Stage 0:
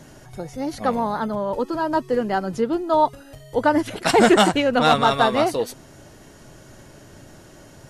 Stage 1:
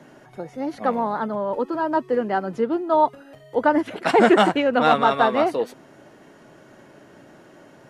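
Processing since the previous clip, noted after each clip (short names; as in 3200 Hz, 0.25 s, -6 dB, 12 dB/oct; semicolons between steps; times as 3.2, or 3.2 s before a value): three-band isolator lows -22 dB, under 160 Hz, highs -13 dB, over 3000 Hz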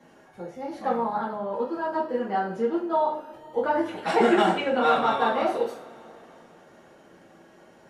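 reverb, pre-delay 3 ms, DRR -6.5 dB; maximiser -3 dB; gain -8.5 dB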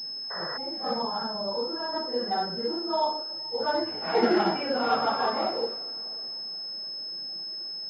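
phase scrambler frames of 0.1 s; painted sound noise, 0.3–0.58, 410–2000 Hz -33 dBFS; pulse-width modulation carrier 5200 Hz; gain -3.5 dB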